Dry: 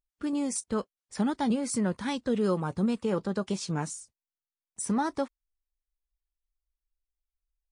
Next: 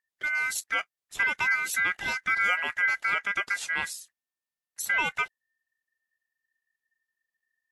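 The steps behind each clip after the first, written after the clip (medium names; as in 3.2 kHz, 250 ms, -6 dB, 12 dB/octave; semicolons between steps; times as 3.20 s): ring modulator 1.8 kHz; trim +4 dB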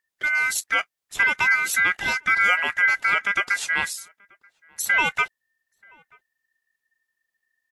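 echo from a far wall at 160 m, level -28 dB; trim +6 dB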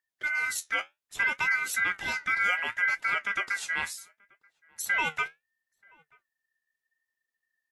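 flange 0.67 Hz, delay 5.8 ms, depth 8.1 ms, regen +64%; trim -3 dB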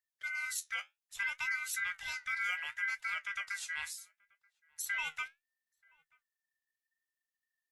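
amplifier tone stack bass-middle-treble 10-0-10; trim -4 dB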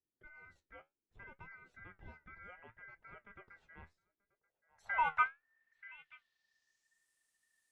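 low-pass sweep 330 Hz -> 9.1 kHz, 4.12–7.07 s; trim +9 dB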